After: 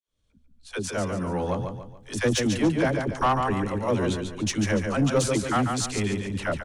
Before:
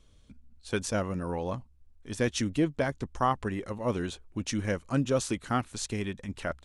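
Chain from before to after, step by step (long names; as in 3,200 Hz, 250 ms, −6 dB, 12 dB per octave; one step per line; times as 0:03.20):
fade in at the beginning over 1.62 s
all-pass dispersion lows, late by 68 ms, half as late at 420 Hz
on a send: repeating echo 143 ms, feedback 38%, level −6.5 dB
on the sum: soft clipping −21 dBFS, distortion −16 dB
level +6.5 dB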